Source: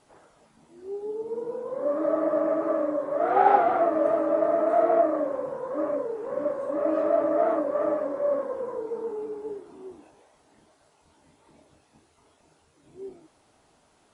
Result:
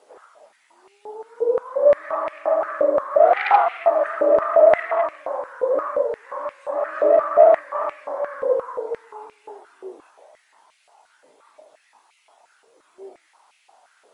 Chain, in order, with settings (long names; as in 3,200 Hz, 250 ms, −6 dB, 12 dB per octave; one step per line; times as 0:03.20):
harmonic generator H 5 −16 dB, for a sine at −6 dBFS
high-pass on a step sequencer 5.7 Hz 480–2,400 Hz
level −2.5 dB